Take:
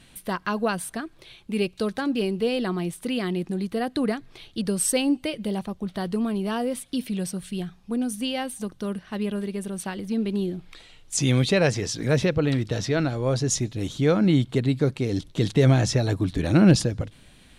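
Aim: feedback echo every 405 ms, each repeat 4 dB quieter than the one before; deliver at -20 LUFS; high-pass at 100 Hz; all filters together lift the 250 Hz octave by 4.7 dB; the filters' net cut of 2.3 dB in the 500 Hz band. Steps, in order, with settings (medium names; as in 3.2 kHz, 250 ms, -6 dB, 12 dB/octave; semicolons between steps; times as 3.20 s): high-pass 100 Hz; peaking EQ 250 Hz +7.5 dB; peaking EQ 500 Hz -5.5 dB; feedback delay 405 ms, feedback 63%, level -4 dB; trim +0.5 dB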